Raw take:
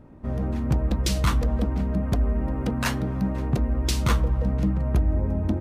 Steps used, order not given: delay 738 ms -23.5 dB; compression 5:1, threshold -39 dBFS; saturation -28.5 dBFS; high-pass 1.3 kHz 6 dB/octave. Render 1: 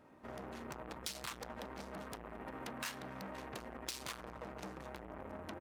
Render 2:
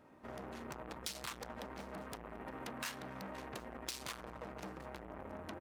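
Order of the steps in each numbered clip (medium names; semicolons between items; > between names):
delay > saturation > high-pass > compression; saturation > high-pass > compression > delay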